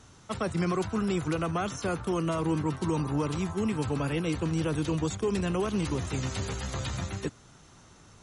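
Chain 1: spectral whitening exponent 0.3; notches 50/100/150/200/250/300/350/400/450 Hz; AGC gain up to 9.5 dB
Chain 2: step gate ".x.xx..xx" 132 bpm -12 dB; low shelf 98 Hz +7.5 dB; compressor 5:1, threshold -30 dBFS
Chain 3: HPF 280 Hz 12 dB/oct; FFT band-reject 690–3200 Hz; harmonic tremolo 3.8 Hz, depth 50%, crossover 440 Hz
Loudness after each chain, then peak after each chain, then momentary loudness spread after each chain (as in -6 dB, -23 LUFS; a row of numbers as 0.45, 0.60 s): -19.0, -36.0, -37.0 LUFS; -3.5, -20.0, -22.5 dBFS; 4, 3, 7 LU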